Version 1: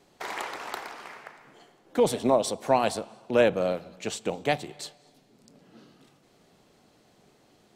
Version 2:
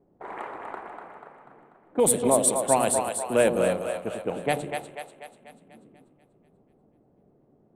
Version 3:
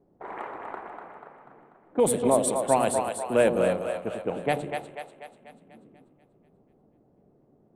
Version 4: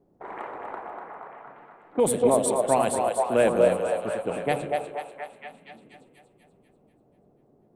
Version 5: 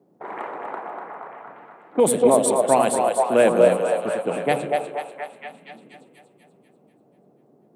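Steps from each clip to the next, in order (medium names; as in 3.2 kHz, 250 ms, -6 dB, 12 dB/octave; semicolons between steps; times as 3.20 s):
level-controlled noise filter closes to 530 Hz, open at -20 dBFS; resonant high shelf 7.1 kHz +11 dB, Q 3; two-band feedback delay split 490 Hz, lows 97 ms, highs 244 ms, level -5.5 dB
treble shelf 5.2 kHz -9 dB
repeats whose band climbs or falls 235 ms, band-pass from 560 Hz, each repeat 0.7 oct, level -2.5 dB
high-pass 140 Hz 24 dB/octave; trim +4.5 dB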